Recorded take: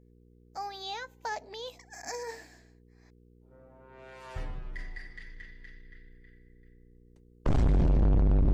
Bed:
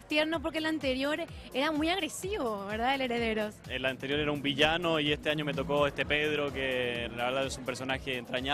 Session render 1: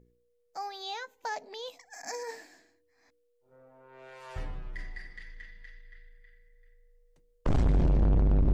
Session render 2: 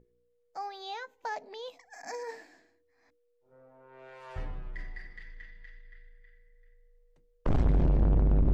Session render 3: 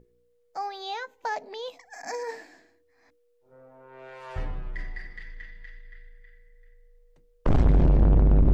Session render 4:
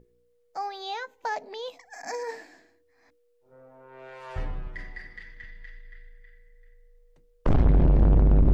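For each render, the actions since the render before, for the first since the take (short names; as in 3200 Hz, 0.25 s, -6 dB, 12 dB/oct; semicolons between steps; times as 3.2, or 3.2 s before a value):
de-hum 60 Hz, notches 7
high shelf 4600 Hz -11.5 dB; notches 60/120/180/240/300 Hz
gain +5.5 dB
4.67–5.44 HPF 53 Hz 6 dB/oct; 7.53–7.96 air absorption 140 m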